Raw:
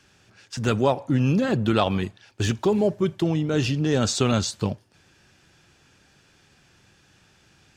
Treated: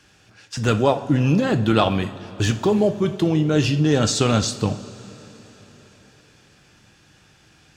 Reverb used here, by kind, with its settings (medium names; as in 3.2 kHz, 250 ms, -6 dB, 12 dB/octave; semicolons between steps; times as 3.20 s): two-slope reverb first 0.39 s, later 4.4 s, from -17 dB, DRR 8 dB; trim +3 dB